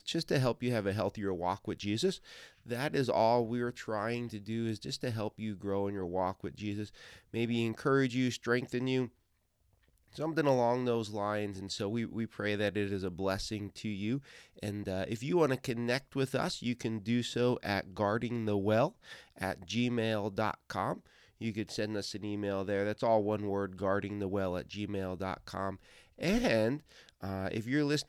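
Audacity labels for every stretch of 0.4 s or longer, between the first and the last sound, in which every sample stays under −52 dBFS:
9.090000	9.980000	silence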